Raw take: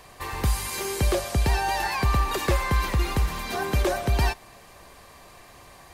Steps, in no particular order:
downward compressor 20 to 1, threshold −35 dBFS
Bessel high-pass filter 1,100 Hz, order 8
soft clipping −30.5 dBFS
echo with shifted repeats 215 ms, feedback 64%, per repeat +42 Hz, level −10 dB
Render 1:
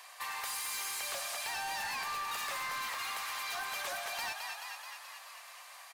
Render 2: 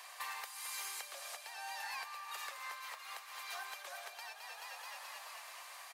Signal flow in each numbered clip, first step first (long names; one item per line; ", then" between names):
Bessel high-pass filter, then echo with shifted repeats, then soft clipping, then downward compressor
echo with shifted repeats, then downward compressor, then Bessel high-pass filter, then soft clipping